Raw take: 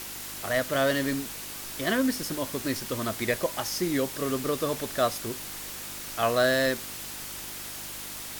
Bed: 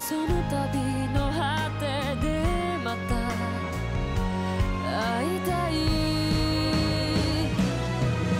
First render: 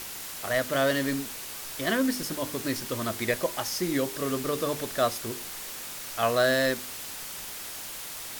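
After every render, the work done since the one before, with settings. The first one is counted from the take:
hum removal 50 Hz, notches 9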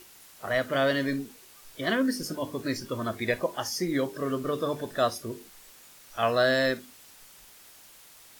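noise reduction from a noise print 14 dB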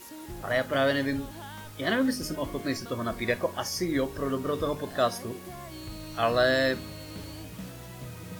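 mix in bed −16 dB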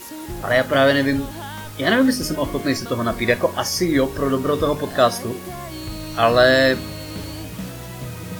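level +9.5 dB

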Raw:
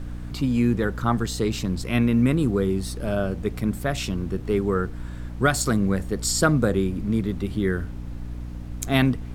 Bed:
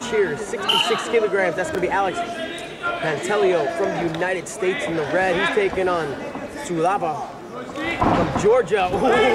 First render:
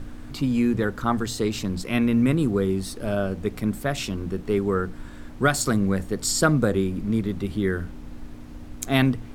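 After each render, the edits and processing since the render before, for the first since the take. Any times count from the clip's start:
mains-hum notches 60/120/180 Hz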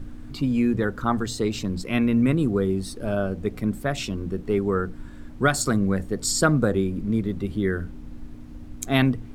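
broadband denoise 6 dB, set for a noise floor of −40 dBFS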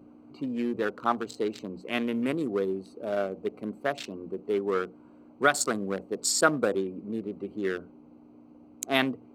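adaptive Wiener filter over 25 samples
high-pass filter 390 Hz 12 dB per octave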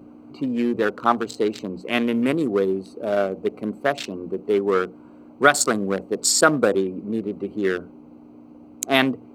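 level +7.5 dB
brickwall limiter −1 dBFS, peak gain reduction 2.5 dB

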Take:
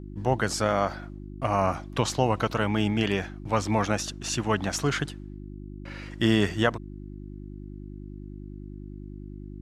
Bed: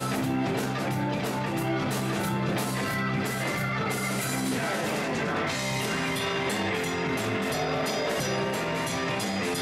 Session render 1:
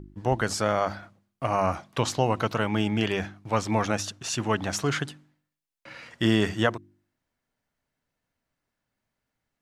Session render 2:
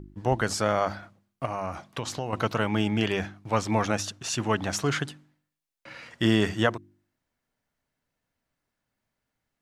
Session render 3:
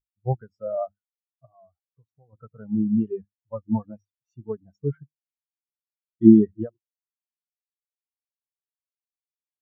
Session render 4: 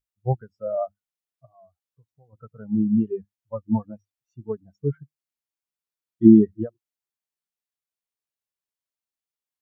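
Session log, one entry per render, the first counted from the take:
hum removal 50 Hz, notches 7
0:01.45–0:02.33: downward compressor 2.5 to 1, threshold −30 dBFS
boost into a limiter +10 dB; every bin expanded away from the loudest bin 4 to 1
level +1.5 dB; brickwall limiter −2 dBFS, peak gain reduction 2.5 dB

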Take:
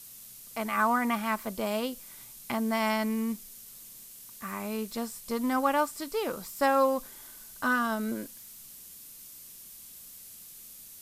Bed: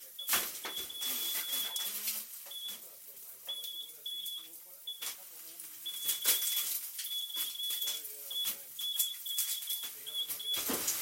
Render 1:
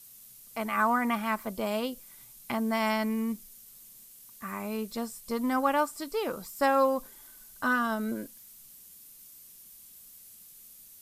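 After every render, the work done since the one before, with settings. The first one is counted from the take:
broadband denoise 6 dB, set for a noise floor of −49 dBFS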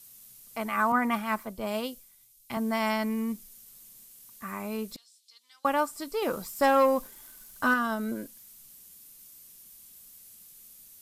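0:00.92–0:02.57: multiband upward and downward expander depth 100%
0:04.96–0:05.65: four-pole ladder band-pass 4,400 Hz, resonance 50%
0:06.22–0:07.74: leveller curve on the samples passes 1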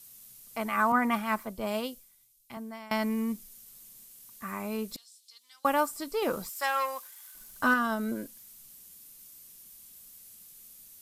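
0:01.70–0:02.91: fade out, to −22 dB
0:04.93–0:05.96: high-shelf EQ 5,200 Hz → 10,000 Hz +7 dB
0:06.49–0:07.35: high-pass filter 1,200 Hz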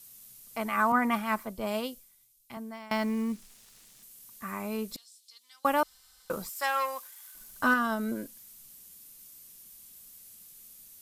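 0:02.73–0:04.03: running median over 3 samples
0:05.83–0:06.30: fill with room tone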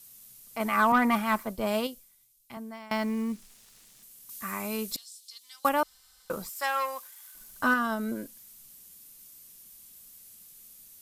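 0:00.60–0:01.87: leveller curve on the samples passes 1
0:04.29–0:05.69: high-shelf EQ 2,300 Hz +9 dB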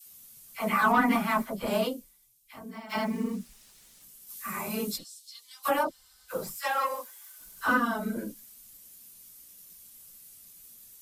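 random phases in long frames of 50 ms
all-pass dispersion lows, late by 58 ms, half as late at 920 Hz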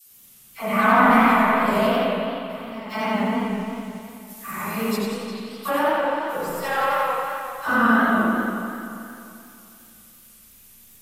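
spring reverb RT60 2.7 s, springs 35/53 ms, chirp 75 ms, DRR −6.5 dB
feedback echo with a swinging delay time 88 ms, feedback 53%, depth 123 cents, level −5 dB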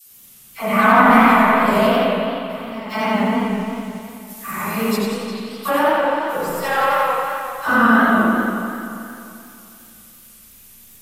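level +4.5 dB
brickwall limiter −1 dBFS, peak gain reduction 2 dB

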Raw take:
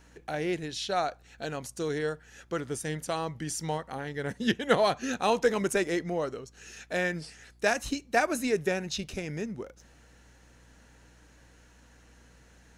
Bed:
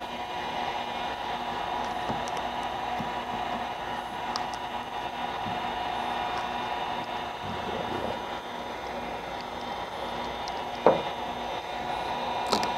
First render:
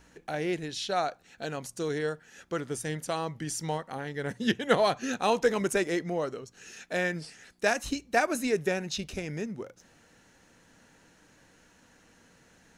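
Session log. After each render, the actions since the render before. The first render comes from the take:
hum removal 60 Hz, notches 2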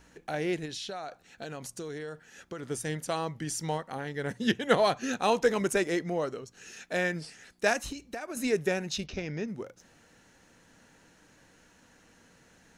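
0:00.65–0:02.63: downward compressor 12 to 1, threshold −34 dBFS
0:07.79–0:08.37: downward compressor 20 to 1, threshold −33 dBFS
0:09.06–0:09.48: Butterworth low-pass 6,100 Hz 48 dB per octave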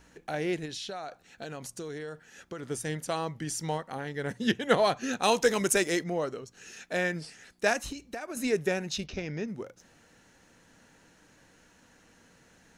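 0:05.23–0:06.04: high-shelf EQ 3,200 Hz +10 dB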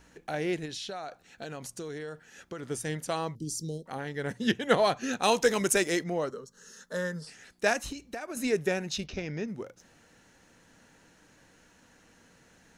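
0:03.35–0:03.86: Chebyshev band-stop filter 430–4,400 Hz, order 3
0:06.30–0:07.27: phaser with its sweep stopped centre 480 Hz, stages 8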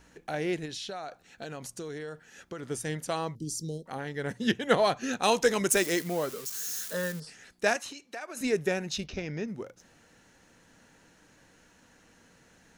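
0:05.71–0:07.20: spike at every zero crossing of −29 dBFS
0:07.76–0:08.41: meter weighting curve A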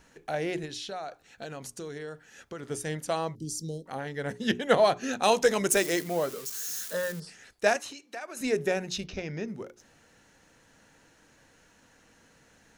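dynamic equaliser 630 Hz, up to +4 dB, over −41 dBFS, Q 2.1
mains-hum notches 60/120/180/240/300/360/420 Hz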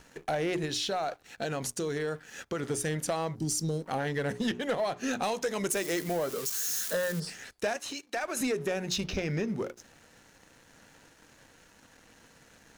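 downward compressor 10 to 1, threshold −33 dBFS, peak gain reduction 16.5 dB
leveller curve on the samples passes 2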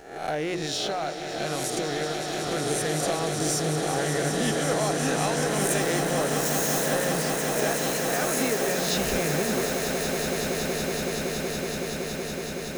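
peak hold with a rise ahead of every peak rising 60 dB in 0.66 s
echo that builds up and dies away 187 ms, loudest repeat 8, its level −9 dB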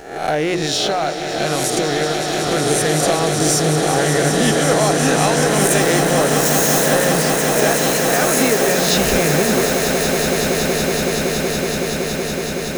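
level +10 dB
brickwall limiter −1 dBFS, peak gain reduction 2 dB

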